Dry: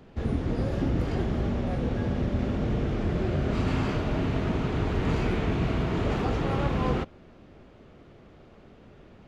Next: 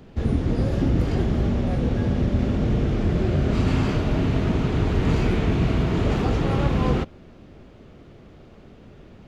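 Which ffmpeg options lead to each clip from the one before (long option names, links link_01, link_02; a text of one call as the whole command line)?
ffmpeg -i in.wav -af "equalizer=frequency=1100:width=0.38:gain=-4.5,volume=6.5dB" out.wav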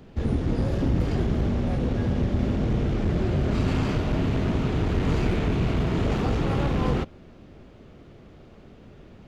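ffmpeg -i in.wav -af "aeval=exprs='clip(val(0),-1,0.1)':channel_layout=same,volume=-1.5dB" out.wav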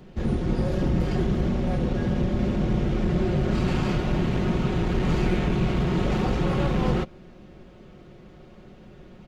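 ffmpeg -i in.wav -af "aecho=1:1:5.5:0.49" out.wav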